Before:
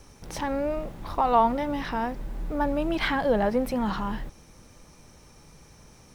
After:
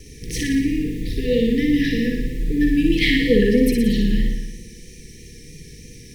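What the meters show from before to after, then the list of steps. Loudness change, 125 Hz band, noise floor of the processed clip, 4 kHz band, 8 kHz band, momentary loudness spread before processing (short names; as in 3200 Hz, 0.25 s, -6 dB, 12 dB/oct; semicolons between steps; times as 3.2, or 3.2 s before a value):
+7.5 dB, +12.0 dB, -42 dBFS, +11.5 dB, +11.5 dB, 12 LU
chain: FFT band-reject 500–1700 Hz; flutter echo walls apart 10 m, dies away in 1 s; vibrato 3.1 Hz 30 cents; gain +9 dB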